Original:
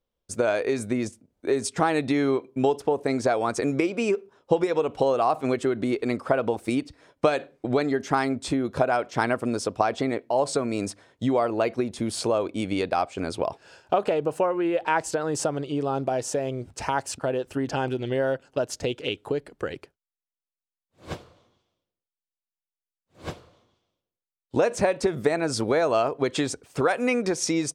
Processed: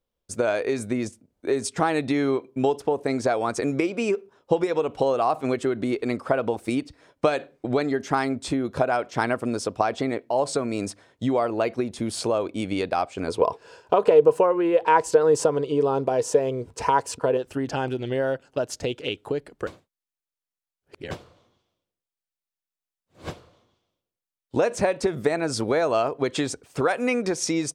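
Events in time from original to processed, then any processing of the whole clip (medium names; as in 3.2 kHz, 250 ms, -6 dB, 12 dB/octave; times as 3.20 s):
13.28–17.37 s: small resonant body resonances 460/990 Hz, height 13 dB
19.67–21.11 s: reverse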